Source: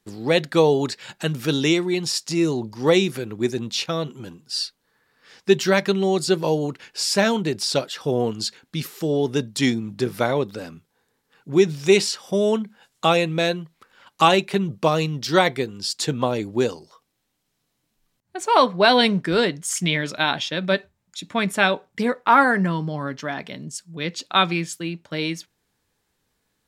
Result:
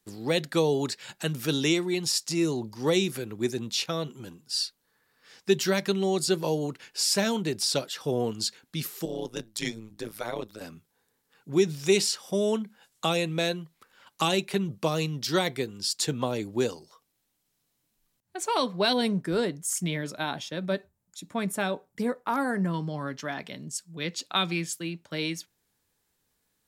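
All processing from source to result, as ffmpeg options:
-filter_complex "[0:a]asettb=1/sr,asplit=3[s0][s1][s2];[s0]atrim=end=9.054[s3];[s1]atrim=start=9.05:end=10.61,asetpts=PTS-STARTPTS,afade=t=in:d=0.004:c=qsin,afade=t=out:st=1.556:d=0.004:c=qsin,lowshelf=f=380:g=-7,tremolo=f=110:d=0.974[s4];[s2]atrim=start=10.606[s5];[s3][s4]acrossfade=d=0.004:c1=hsin:c2=qsin[s6];[s6][s5]acrossfade=d=0.004:c1=qsin:c2=hsin,asettb=1/sr,asplit=3[s7][s8][s9];[s7]atrim=end=18.934[s10];[s8]atrim=start=18.93:end=22.74,asetpts=PTS-STARTPTS,afade=t=in:d=0.004:c=qsin,afade=t=out:st=3.806:d=0.004:c=qsin,equalizer=f=3000:w=0.55:g=-9,asoftclip=type=hard:threshold=0.398[s11];[s9]atrim=start=22.736[s12];[s10][s11]acrossfade=d=0.004:c1=hsin:c2=qsin[s13];[s13][s12]acrossfade=d=0.004:c1=qsin:c2=hsin,acrossover=split=420|3000[s14][s15][s16];[s15]acompressor=threshold=0.0891:ratio=6[s17];[s14][s17][s16]amix=inputs=3:normalize=0,highshelf=f=7200:g=9.5,volume=0.531"

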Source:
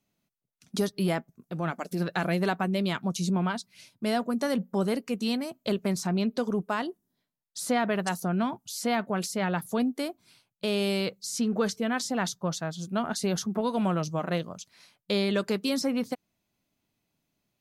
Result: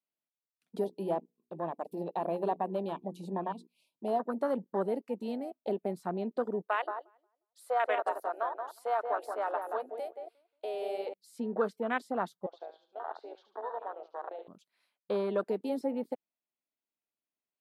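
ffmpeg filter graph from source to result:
-filter_complex "[0:a]asettb=1/sr,asplit=3[s0][s1][s2];[s0]atrim=end=0.844[s3];[s1]atrim=start=0.84:end=4.2,asetpts=PTS-STARTPTS,afade=t=in:d=0.004:c=qsin,afade=t=out:st=3.356:d=0.004:c=qsin,asuperstop=centerf=1600:order=12:qfactor=1.3,bandreject=f=60:t=h:w=6,bandreject=f=120:t=h:w=6,bandreject=f=180:t=h:w=6,bandreject=f=240:t=h:w=6,bandreject=f=300:t=h:w=6,bandreject=f=360:t=h:w=6,bandreject=f=420:t=h:w=6,bandreject=f=480:t=h:w=6[s4];[s2]atrim=start=4.196[s5];[s3][s4]acrossfade=d=0.004:c1=hsin:c2=qsin[s6];[s6][s5]acrossfade=d=0.004:c1=qsin:c2=hsin,asettb=1/sr,asplit=3[s7][s8][s9];[s7]atrim=end=6.674[s10];[s8]atrim=start=6.67:end=11.14,asetpts=PTS-STARTPTS,afade=t=in:d=0.004:c=qsin,afade=t=out:st=4.466:d=0.004:c=qsin,highpass=f=470:w=0.5412,highpass=f=470:w=1.3066,asplit=2[s11][s12];[s12]adelay=178,lowpass=f=1200:p=1,volume=0.668,asplit=2[s13][s14];[s14]adelay=178,lowpass=f=1200:p=1,volume=0.29,asplit=2[s15][s16];[s16]adelay=178,lowpass=f=1200:p=1,volume=0.29,asplit=2[s17][s18];[s18]adelay=178,lowpass=f=1200:p=1,volume=0.29[s19];[s11][s13][s15][s17][s19]amix=inputs=5:normalize=0,atrim=end_sample=197127[s20];[s9]atrim=start=11.136[s21];[s10][s20]acrossfade=d=0.004:c1=hsin:c2=qsin[s22];[s22][s21]acrossfade=d=0.004:c1=qsin:c2=hsin,asettb=1/sr,asplit=3[s23][s24][s25];[s23]atrim=end=12.464[s26];[s24]atrim=start=12.46:end=14.48,asetpts=PTS-STARTPTS,afade=t=in:d=0.004:c=qsin,afade=t=out:st=2.016:d=0.004:c=qsin,acompressor=threshold=0.0355:ratio=5:attack=3.2:release=140:knee=1:detection=peak,highpass=f=450:w=0.5412,highpass=f=450:w=1.3066,equalizer=f=590:t=q:w=4:g=-4,equalizer=f=830:t=q:w=4:g=6,equalizer=f=1300:t=q:w=4:g=-7,equalizer=f=1900:t=q:w=4:g=-7,equalizer=f=2700:t=q:w=4:g=-4,lowpass=f=4100:w=0.5412,lowpass=f=4100:w=1.3066,aecho=1:1:73|146|219|292:0.398|0.127|0.0408|0.013,atrim=end_sample=89082[s27];[s25]atrim=start=14.476[s28];[s26][s27]acrossfade=d=0.004:c1=hsin:c2=qsin[s29];[s29][s28]acrossfade=d=0.004:c1=qsin:c2=hsin,equalizer=f=6100:w=1.7:g=-14.5,afwtdn=0.0251,highpass=370"

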